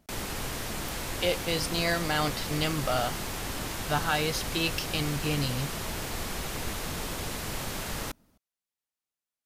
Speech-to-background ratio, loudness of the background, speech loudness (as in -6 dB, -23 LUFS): 4.0 dB, -34.0 LUFS, -30.0 LUFS